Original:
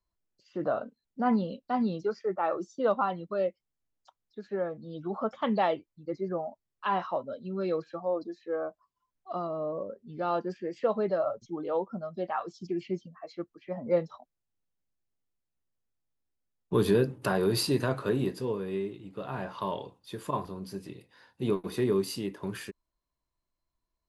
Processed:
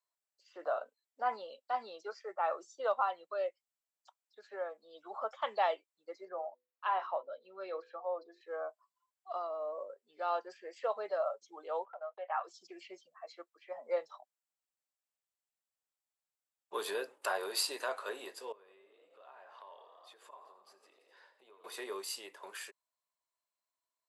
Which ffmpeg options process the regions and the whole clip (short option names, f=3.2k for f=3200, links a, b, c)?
-filter_complex "[0:a]asettb=1/sr,asplit=3[a][b][c];[a]atrim=end=6.254[d];[b]atrim=start=6.25:end=8.41,asetpts=PTS-STARTPTS,afade=t=in:d=0.004:c=qsin,afade=t=out:st=2.156:d=0.004:c=qsin,equalizer=f=7.3k:t=o:w=1.4:g=-13,bandreject=f=50:t=h:w=6,bandreject=f=100:t=h:w=6,bandreject=f=150:t=h:w=6,bandreject=f=200:t=h:w=6,bandreject=f=250:t=h:w=6,bandreject=f=300:t=h:w=6,bandreject=f=350:t=h:w=6,bandreject=f=400:t=h:w=6,bandreject=f=450:t=h:w=6,bandreject=f=500:t=h:w=6[e];[c]atrim=start=8.406[f];[d][e]acrossfade=d=0.004:c1=hsin:c2=qsin[g];[g][f]acrossfade=d=0.004:c1=qsin:c2=hsin,asettb=1/sr,asplit=3[h][i][j];[h]atrim=end=11.854[k];[i]atrim=start=11.85:end=12.44,asetpts=PTS-STARTPTS,afade=t=in:d=0.004:c=qsin,afade=t=out:st=0.586:d=0.004:c=qsin,agate=range=-30dB:threshold=-45dB:ratio=16:release=100:detection=peak,asuperpass=centerf=1200:order=8:qfactor=0.53,acompressor=mode=upward:threshold=-34dB:ratio=2.5:attack=3.2:release=140:knee=2.83:detection=peak[l];[j]atrim=start=12.436[m];[k][l]acrossfade=d=0.004:c1=hsin:c2=qsin[n];[n][m]acrossfade=d=0.004:c1=qsin:c2=hsin,asettb=1/sr,asplit=3[o][p][q];[o]atrim=end=18.524[r];[p]atrim=start=18.52:end=21.64,asetpts=PTS-STARTPTS,afade=t=in:d=0.004:c=qsin,afade=t=out:st=3.116:d=0.004:c=qsin,lowpass=f=3.5k:p=1,asplit=8[s][t][u][v][w][x][y][z];[t]adelay=84,afreqshift=33,volume=-13dB[aa];[u]adelay=168,afreqshift=66,volume=-17.2dB[ab];[v]adelay=252,afreqshift=99,volume=-21.3dB[ac];[w]adelay=336,afreqshift=132,volume=-25.5dB[ad];[x]adelay=420,afreqshift=165,volume=-29.6dB[ae];[y]adelay=504,afreqshift=198,volume=-33.8dB[af];[z]adelay=588,afreqshift=231,volume=-37.9dB[ag];[s][aa][ab][ac][ad][ae][af][ag]amix=inputs=8:normalize=0,atrim=end_sample=137592,acompressor=threshold=-50dB:ratio=3:attack=3.2:release=140:knee=1:detection=peak[ah];[q]atrim=start=21.636[ai];[r][ah]acrossfade=d=0.004:c1=hsin:c2=qsin[aj];[aj][ai]acrossfade=d=0.004:c1=qsin:c2=hsin,highpass=f=570:w=0.5412,highpass=f=570:w=1.3066,equalizer=f=7.7k:t=o:w=0.21:g=8,volume=-3dB"